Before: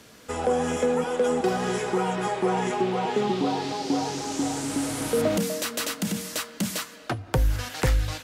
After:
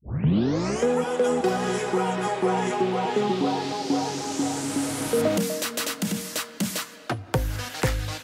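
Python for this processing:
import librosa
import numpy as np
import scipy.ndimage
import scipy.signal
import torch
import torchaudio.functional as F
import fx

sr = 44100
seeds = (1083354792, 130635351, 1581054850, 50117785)

y = fx.tape_start_head(x, sr, length_s=0.87)
y = scipy.signal.sosfilt(scipy.signal.butter(2, 77.0, 'highpass', fs=sr, output='sos'), y)
y = y * 10.0 ** (1.0 / 20.0)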